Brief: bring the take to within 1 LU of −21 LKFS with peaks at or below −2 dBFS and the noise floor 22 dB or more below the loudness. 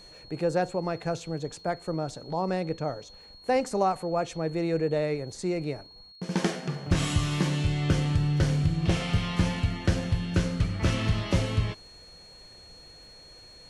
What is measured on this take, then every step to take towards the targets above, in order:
crackle rate 29 per second; interfering tone 4,300 Hz; level of the tone −49 dBFS; integrated loudness −28.5 LKFS; sample peak −12.0 dBFS; target loudness −21.0 LKFS
→ click removal
notch filter 4,300 Hz, Q 30
level +7.5 dB

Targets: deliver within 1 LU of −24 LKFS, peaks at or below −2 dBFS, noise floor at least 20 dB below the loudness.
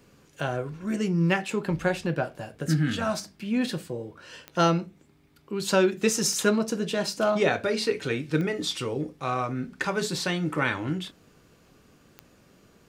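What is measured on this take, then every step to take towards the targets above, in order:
number of clicks 4; integrated loudness −27.0 LKFS; sample peak −8.0 dBFS; target loudness −24.0 LKFS
→ click removal
level +3 dB

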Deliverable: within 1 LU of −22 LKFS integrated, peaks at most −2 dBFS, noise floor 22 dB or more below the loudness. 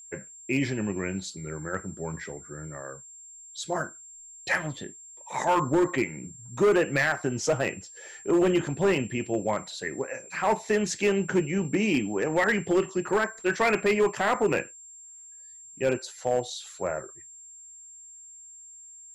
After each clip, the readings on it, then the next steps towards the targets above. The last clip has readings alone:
share of clipped samples 1.0%; peaks flattened at −17.0 dBFS; interfering tone 7,400 Hz; level of the tone −45 dBFS; integrated loudness −27.0 LKFS; sample peak −17.0 dBFS; target loudness −22.0 LKFS
→ clipped peaks rebuilt −17 dBFS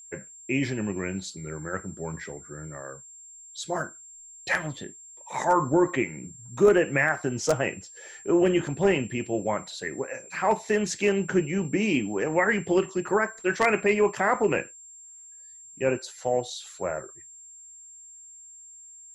share of clipped samples 0.0%; interfering tone 7,400 Hz; level of the tone −45 dBFS
→ notch filter 7,400 Hz, Q 30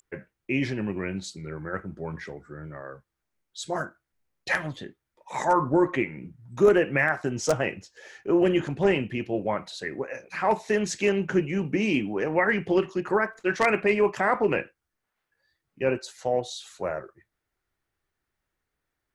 interfering tone none found; integrated loudness −26.0 LKFS; sample peak −8.0 dBFS; target loudness −22.0 LKFS
→ level +4 dB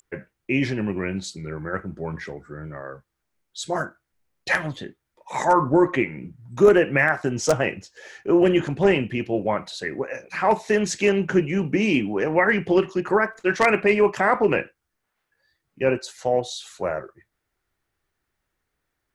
integrated loudness −22.0 LKFS; sample peak −4.0 dBFS; background noise floor −79 dBFS

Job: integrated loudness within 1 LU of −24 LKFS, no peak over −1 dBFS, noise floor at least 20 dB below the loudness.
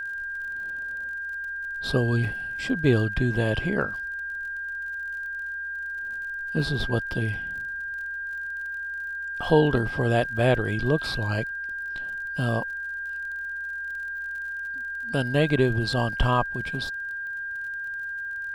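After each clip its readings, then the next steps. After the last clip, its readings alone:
crackle rate 47 per second; interfering tone 1,600 Hz; level of the tone −30 dBFS; integrated loudness −27.5 LKFS; sample peak −7.5 dBFS; target loudness −24.0 LKFS
→ click removal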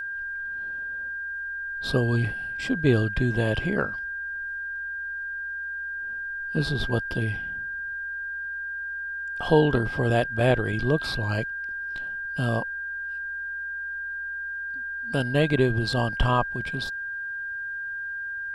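crackle rate 0.054 per second; interfering tone 1,600 Hz; level of the tone −30 dBFS
→ notch filter 1,600 Hz, Q 30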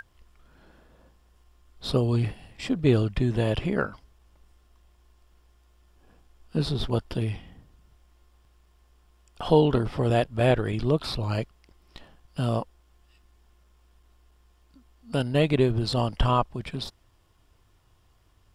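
interfering tone none found; integrated loudness −26.0 LKFS; sample peak −7.5 dBFS; target loudness −24.0 LKFS
→ level +2 dB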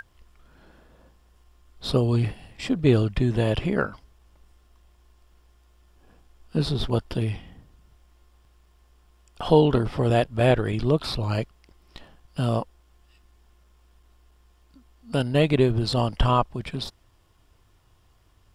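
integrated loudness −24.0 LKFS; sample peak −5.5 dBFS; background noise floor −60 dBFS

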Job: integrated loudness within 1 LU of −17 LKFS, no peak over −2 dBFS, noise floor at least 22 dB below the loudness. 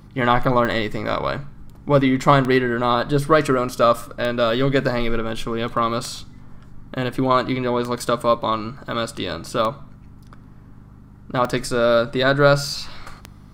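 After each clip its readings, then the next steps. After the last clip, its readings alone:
number of clicks 8; mains hum 50 Hz; hum harmonics up to 200 Hz; level of the hum −44 dBFS; integrated loudness −20.5 LKFS; sample peak −1.5 dBFS; target loudness −17.0 LKFS
→ click removal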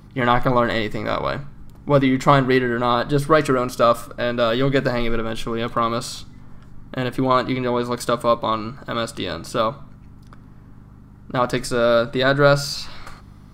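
number of clicks 0; mains hum 50 Hz; hum harmonics up to 200 Hz; level of the hum −44 dBFS
→ hum removal 50 Hz, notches 4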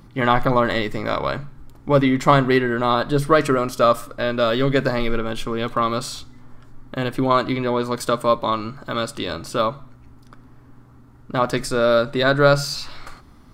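mains hum none found; integrated loudness −20.5 LKFS; sample peak −1.5 dBFS; target loudness −17.0 LKFS
→ level +3.5 dB
brickwall limiter −2 dBFS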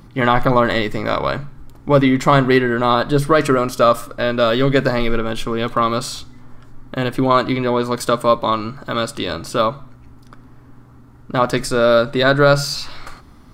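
integrated loudness −17.0 LKFS; sample peak −2.0 dBFS; background noise floor −44 dBFS

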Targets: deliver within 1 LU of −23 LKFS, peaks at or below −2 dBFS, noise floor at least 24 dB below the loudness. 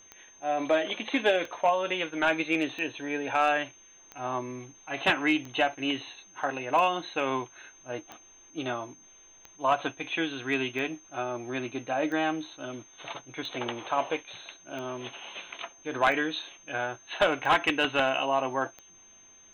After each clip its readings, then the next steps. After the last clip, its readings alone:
number of clicks 15; interfering tone 6,300 Hz; level of the tone −53 dBFS; integrated loudness −29.0 LKFS; sample peak −14.5 dBFS; target loudness −23.0 LKFS
→ click removal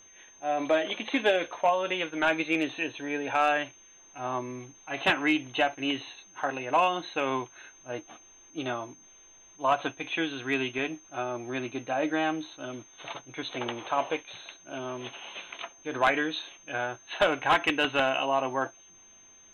number of clicks 0; interfering tone 6,300 Hz; level of the tone −53 dBFS
→ notch filter 6,300 Hz, Q 30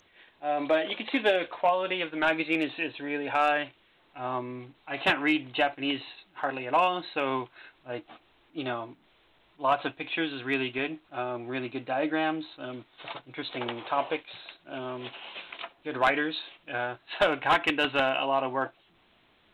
interfering tone none found; integrated loudness −29.0 LKFS; sample peak −15.5 dBFS; target loudness −23.0 LKFS
→ level +6 dB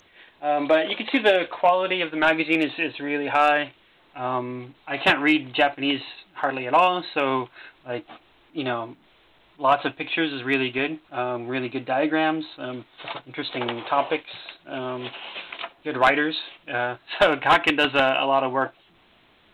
integrated loudness −23.0 LKFS; sample peak −9.5 dBFS; background noise floor −58 dBFS

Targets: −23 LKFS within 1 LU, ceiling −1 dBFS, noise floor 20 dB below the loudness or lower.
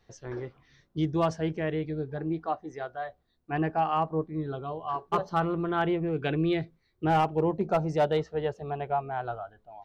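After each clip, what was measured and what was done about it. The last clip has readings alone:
share of clipped samples 0.3%; peaks flattened at −18.0 dBFS; integrated loudness −30.0 LKFS; sample peak −18.0 dBFS; target loudness −23.0 LKFS
→ clipped peaks rebuilt −18 dBFS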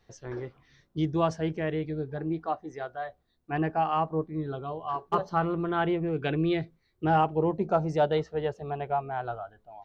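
share of clipped samples 0.0%; integrated loudness −29.5 LKFS; sample peak −12.5 dBFS; target loudness −23.0 LKFS
→ level +6.5 dB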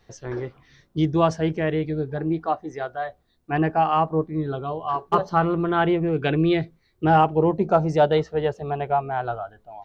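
integrated loudness −23.0 LKFS; sample peak −6.0 dBFS; background noise floor −65 dBFS

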